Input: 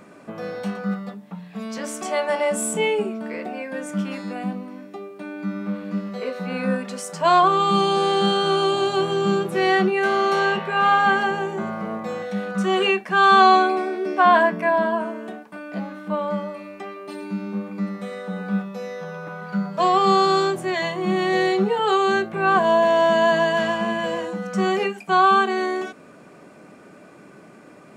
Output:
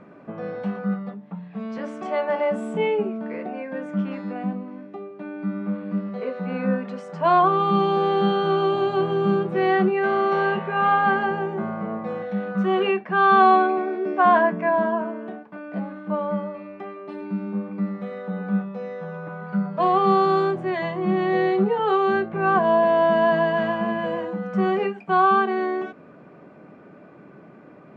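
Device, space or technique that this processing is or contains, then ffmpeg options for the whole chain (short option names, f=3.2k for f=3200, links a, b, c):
phone in a pocket: -filter_complex "[0:a]asettb=1/sr,asplit=3[a][b][c];[a]atrim=end=12.824[d];[b]atrim=start=12.82:end=13.88,asetpts=PTS-STARTPTS,afade=t=in:d=0.004:c=qsin,afade=t=out:st=1.056:d=0.004:c=qsin,lowpass=5k[e];[c]atrim=start=13.876[f];[d][e]acrossfade=d=0.004:c1=hsin:c2=qsin[g];[g][f]acrossfade=d=0.004:c1=qsin:c2=hsin,lowpass=3.4k,equalizer=f=150:t=o:w=0.43:g=3,highshelf=f=2.4k:g=-11"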